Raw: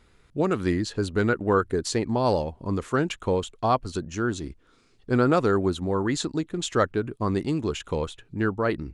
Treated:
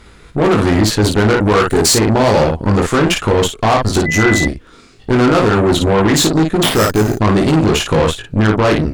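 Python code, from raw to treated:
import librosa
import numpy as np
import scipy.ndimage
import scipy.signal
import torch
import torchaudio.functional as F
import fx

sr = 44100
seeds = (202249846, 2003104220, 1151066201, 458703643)

p1 = fx.high_shelf(x, sr, hz=4600.0, db=12.0, at=(1.35, 1.93))
p2 = fx.over_compress(p1, sr, threshold_db=-26.0, ratio=-0.5)
p3 = p1 + (p2 * 10.0 ** (-0.5 / 20.0))
p4 = fx.sample_hold(p3, sr, seeds[0], rate_hz=6600.0, jitter_pct=0, at=(6.63, 7.14))
p5 = fx.room_early_taps(p4, sr, ms=(19, 56), db=(-3.0, -5.0))
p6 = 10.0 ** (-14.5 / 20.0) * np.tanh(p5 / 10.0 ** (-14.5 / 20.0))
p7 = fx.cheby_harmonics(p6, sr, harmonics=(4,), levels_db=(-13,), full_scale_db=-14.5)
p8 = fx.dmg_tone(p7, sr, hz=2000.0, level_db=-24.0, at=(4.05, 4.46), fade=0.02)
y = p8 * 10.0 ** (8.5 / 20.0)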